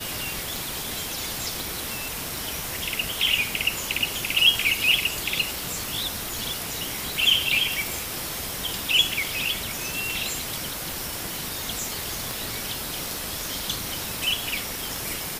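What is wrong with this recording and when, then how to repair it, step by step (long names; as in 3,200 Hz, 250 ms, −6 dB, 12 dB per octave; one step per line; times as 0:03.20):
scratch tick 33 1/3 rpm
0:01.60: click
0:12.31: click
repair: click removal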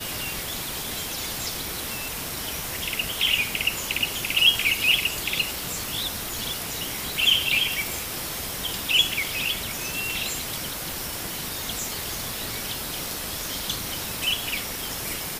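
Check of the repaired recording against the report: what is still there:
none of them is left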